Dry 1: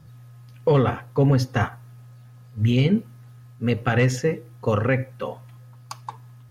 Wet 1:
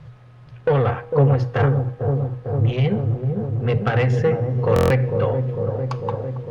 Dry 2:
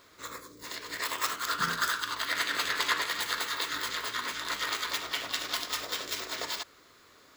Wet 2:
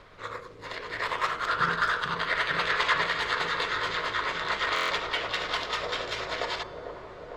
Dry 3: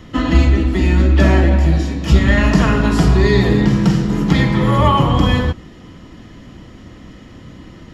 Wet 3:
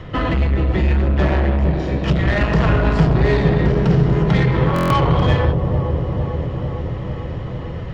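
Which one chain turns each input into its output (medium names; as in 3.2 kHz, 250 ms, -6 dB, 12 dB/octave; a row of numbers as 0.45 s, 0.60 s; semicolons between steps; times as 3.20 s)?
ten-band graphic EQ 125 Hz +6 dB, 250 Hz -11 dB, 500 Hz +5 dB; in parallel at +2 dB: compression 6:1, threshold -21 dBFS; on the sum: added noise pink -53 dBFS; low-pass 3.1 kHz 12 dB/octave; saturation -11 dBFS; hum notches 60/120/180/240/300 Hz; feedback comb 160 Hz, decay 1.7 s, mix 50%; on a send: feedback echo behind a low-pass 451 ms, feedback 73%, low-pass 590 Hz, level -3.5 dB; on the sum: buffer glitch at 4.74 s, samples 1024, times 6; trim +4.5 dB; Opus 48 kbps 48 kHz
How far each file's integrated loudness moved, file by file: +2.0 LU, +3.0 LU, -3.5 LU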